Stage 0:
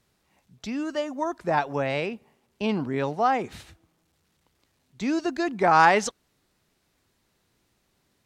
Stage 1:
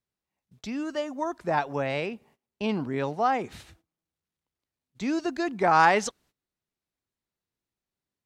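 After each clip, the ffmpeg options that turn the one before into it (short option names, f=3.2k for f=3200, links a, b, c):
-af "agate=range=-19dB:threshold=-56dB:ratio=16:detection=peak,volume=-2dB"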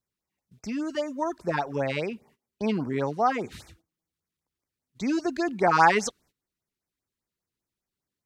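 -af "afftfilt=real='re*(1-between(b*sr/1024,590*pow(3700/590,0.5+0.5*sin(2*PI*5*pts/sr))/1.41,590*pow(3700/590,0.5+0.5*sin(2*PI*5*pts/sr))*1.41))':imag='im*(1-between(b*sr/1024,590*pow(3700/590,0.5+0.5*sin(2*PI*5*pts/sr))/1.41,590*pow(3700/590,0.5+0.5*sin(2*PI*5*pts/sr))*1.41))':win_size=1024:overlap=0.75,volume=1.5dB"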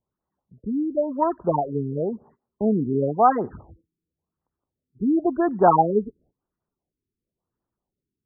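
-af "highshelf=f=1.6k:t=q:w=1.5:g=-10,afftfilt=real='re*lt(b*sr/1024,430*pow(2100/430,0.5+0.5*sin(2*PI*0.95*pts/sr)))':imag='im*lt(b*sr/1024,430*pow(2100/430,0.5+0.5*sin(2*PI*0.95*pts/sr)))':win_size=1024:overlap=0.75,volume=5.5dB"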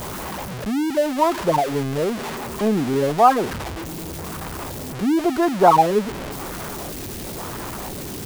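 -af "aeval=exprs='val(0)+0.5*0.0596*sgn(val(0))':c=same,lowshelf=f=460:g=-5.5,volume=3.5dB"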